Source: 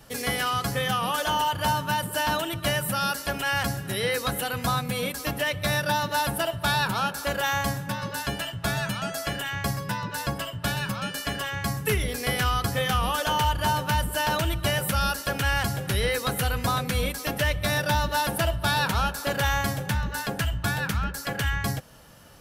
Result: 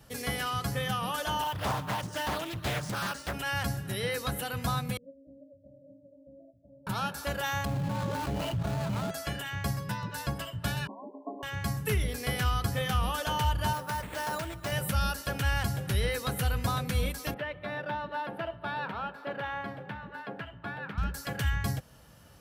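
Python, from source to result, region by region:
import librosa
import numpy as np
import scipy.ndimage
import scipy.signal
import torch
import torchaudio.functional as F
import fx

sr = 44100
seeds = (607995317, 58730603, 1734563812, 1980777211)

y = fx.chain(x, sr, fx.ellip_lowpass(hz=9400.0, order=4, stop_db=40),
    fx.resample_bad(factor=3, down='none', up='hold'),
    fx.doppler_dist(depth_ms=0.69), at=(1.42, 3.33))
y = fx.chain(y, sr, fx.cheby1_lowpass(hz=670.0, order=8),
    fx.low_shelf(hz=180.0, db=-5.0),
    fx.stiff_resonator(f0_hz=270.0, decay_s=0.29, stiffness=0.008), at=(4.97, 6.87))
y = fx.chain(y, sr, fx.median_filter(points=25),
    fx.bass_treble(bass_db=-3, treble_db=2),
    fx.env_flatten(amount_pct=100), at=(7.65, 9.11))
y = fx.chain(y, sr, fx.brickwall_bandpass(low_hz=210.0, high_hz=1100.0),
    fx.comb(ms=2.9, depth=0.54), at=(10.87, 11.43))
y = fx.chain(y, sr, fx.highpass(hz=360.0, slope=6),
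    fx.peak_eq(hz=3000.0, db=-9.5, octaves=0.74),
    fx.resample_bad(factor=4, down='none', up='hold'), at=(13.73, 14.72))
y = fx.chain(y, sr, fx.highpass(hz=270.0, slope=12),
    fx.air_absorb(metres=470.0), at=(17.34, 20.98))
y = scipy.signal.sosfilt(scipy.signal.butter(2, 55.0, 'highpass', fs=sr, output='sos'), y)
y = fx.low_shelf(y, sr, hz=110.0, db=10.5)
y = F.gain(torch.from_numpy(y), -6.5).numpy()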